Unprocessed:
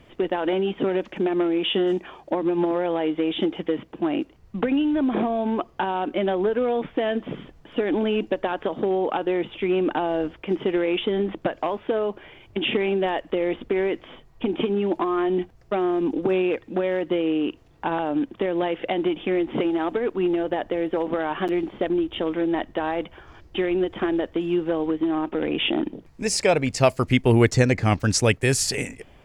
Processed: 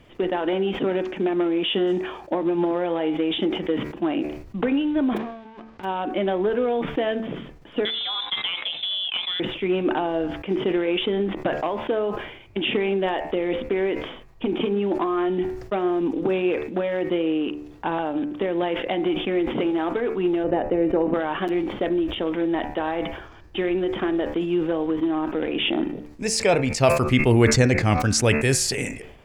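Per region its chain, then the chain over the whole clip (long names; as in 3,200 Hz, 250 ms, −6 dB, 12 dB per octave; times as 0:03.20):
0:05.16–0:05.83: spectral envelope flattened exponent 0.3 + head-to-tape spacing loss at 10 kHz 42 dB + downward compressor 16 to 1, threshold −36 dBFS
0:07.85–0:09.40: low-shelf EQ 390 Hz −11 dB + voice inversion scrambler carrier 3,800 Hz
0:20.44–0:21.14: Butterworth band-reject 3,300 Hz, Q 6.2 + tilt shelving filter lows +6 dB, about 930 Hz
whole clip: hum removal 74.23 Hz, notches 36; level that may fall only so fast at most 70 dB per second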